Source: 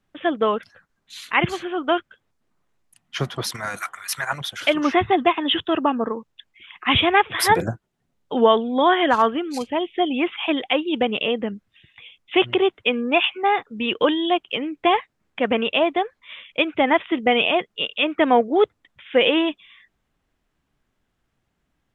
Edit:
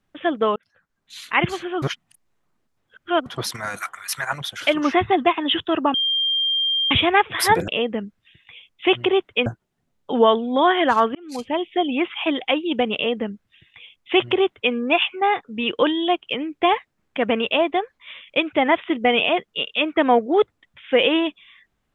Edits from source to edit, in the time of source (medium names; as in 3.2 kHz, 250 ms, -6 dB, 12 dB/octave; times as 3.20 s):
0.56–1.19 s: fade in
1.82–3.26 s: reverse
5.94–6.91 s: bleep 3.19 kHz -18 dBFS
9.37–9.67 s: fade in
11.17–12.95 s: copy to 7.68 s